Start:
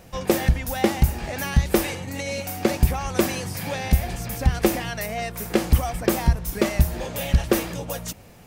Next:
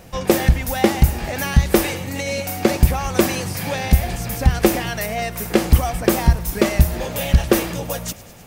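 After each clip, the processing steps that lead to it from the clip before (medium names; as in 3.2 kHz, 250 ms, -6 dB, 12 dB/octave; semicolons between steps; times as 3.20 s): thinning echo 103 ms, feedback 74%, level -18.5 dB; trim +4.5 dB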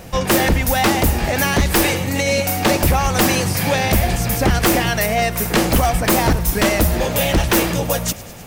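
wavefolder -14.5 dBFS; trim +6.5 dB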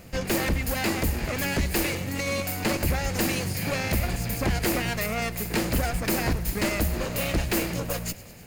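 comb filter that takes the minimum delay 0.43 ms; trim -9 dB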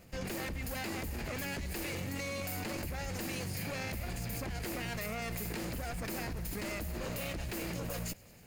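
level held to a coarse grid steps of 19 dB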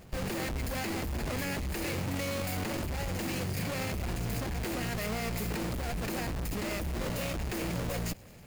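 square wave that keeps the level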